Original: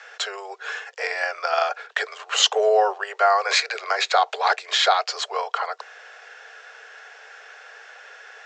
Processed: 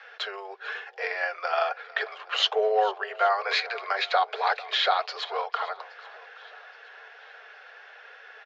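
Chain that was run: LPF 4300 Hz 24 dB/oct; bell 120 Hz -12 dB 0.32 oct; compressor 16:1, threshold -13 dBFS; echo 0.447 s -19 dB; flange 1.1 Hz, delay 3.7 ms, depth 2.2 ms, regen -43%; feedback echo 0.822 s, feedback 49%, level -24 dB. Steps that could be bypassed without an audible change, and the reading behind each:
bell 120 Hz: input band starts at 360 Hz

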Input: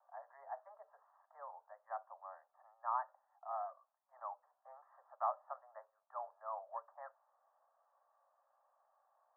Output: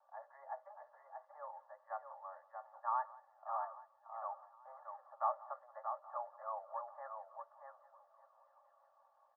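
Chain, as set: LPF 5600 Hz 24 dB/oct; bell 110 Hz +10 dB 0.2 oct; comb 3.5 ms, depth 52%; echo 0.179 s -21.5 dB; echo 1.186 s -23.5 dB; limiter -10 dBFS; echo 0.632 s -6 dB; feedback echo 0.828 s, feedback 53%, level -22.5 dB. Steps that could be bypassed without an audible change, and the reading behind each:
LPF 5600 Hz: input band ends at 1800 Hz; bell 110 Hz: input band starts at 510 Hz; limiter -10 dBFS: input peak -23.0 dBFS

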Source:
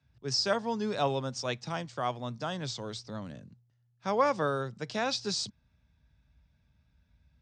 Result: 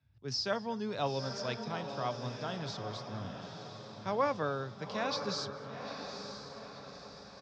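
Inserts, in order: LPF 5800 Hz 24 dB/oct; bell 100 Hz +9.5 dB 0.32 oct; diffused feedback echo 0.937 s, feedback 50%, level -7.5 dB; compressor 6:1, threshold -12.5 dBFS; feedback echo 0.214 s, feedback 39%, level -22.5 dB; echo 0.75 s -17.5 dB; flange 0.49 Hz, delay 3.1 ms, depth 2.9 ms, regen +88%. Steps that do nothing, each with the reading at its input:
compressor, threshold -12.5 dBFS: input peak -14.0 dBFS

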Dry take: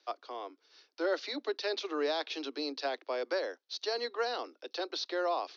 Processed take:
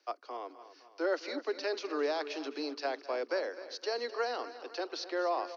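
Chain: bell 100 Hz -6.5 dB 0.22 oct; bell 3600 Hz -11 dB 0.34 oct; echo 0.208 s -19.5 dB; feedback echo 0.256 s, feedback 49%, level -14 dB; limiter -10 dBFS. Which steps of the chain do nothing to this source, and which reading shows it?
bell 100 Hz: input band starts at 230 Hz; limiter -10 dBFS: input peak -20.0 dBFS

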